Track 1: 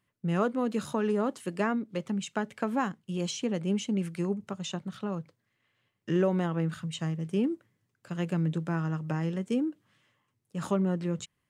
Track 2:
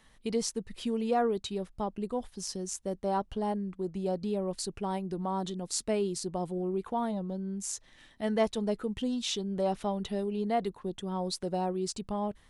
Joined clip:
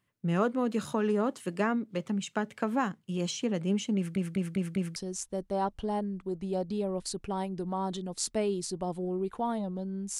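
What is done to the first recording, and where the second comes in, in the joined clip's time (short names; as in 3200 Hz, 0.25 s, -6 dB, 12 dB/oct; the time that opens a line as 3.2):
track 1
3.96 stutter in place 0.20 s, 5 plays
4.96 switch to track 2 from 2.49 s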